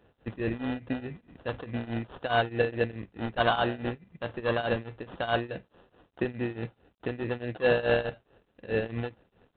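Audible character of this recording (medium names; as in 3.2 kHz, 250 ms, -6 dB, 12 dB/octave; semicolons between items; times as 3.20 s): tremolo triangle 4.7 Hz, depth 90%; aliases and images of a low sample rate 2.2 kHz, jitter 0%; G.726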